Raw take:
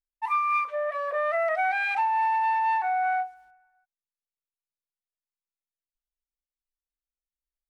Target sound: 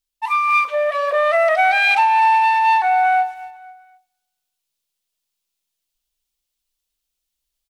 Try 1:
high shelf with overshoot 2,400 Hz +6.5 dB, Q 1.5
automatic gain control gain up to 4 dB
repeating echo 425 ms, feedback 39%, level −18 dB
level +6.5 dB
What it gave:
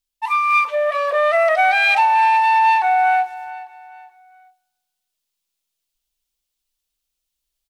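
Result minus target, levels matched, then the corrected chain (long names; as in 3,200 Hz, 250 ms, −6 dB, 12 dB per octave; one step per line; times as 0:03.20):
echo 176 ms late
high shelf with overshoot 2,400 Hz +6.5 dB, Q 1.5
automatic gain control gain up to 4 dB
repeating echo 249 ms, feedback 39%, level −18 dB
level +6.5 dB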